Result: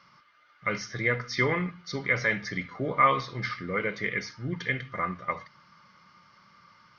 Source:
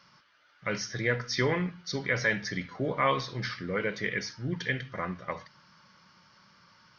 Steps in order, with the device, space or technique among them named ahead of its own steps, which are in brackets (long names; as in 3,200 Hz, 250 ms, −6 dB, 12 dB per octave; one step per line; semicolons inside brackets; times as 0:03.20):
inside a helmet (high-shelf EQ 5,500 Hz −7 dB; hollow resonant body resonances 1,200/2,100 Hz, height 12 dB, ringing for 45 ms)